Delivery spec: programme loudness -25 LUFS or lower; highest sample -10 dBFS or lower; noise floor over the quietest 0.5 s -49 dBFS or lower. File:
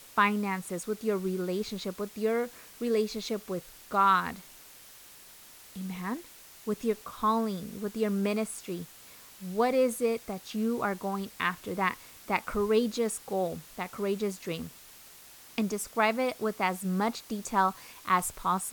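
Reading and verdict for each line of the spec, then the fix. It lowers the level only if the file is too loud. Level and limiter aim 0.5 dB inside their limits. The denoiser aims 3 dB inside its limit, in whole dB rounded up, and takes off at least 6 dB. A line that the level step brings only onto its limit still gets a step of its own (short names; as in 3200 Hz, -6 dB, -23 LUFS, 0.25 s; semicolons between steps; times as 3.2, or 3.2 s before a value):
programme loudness -30.5 LUFS: OK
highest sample -11.0 dBFS: OK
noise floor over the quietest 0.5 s -52 dBFS: OK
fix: none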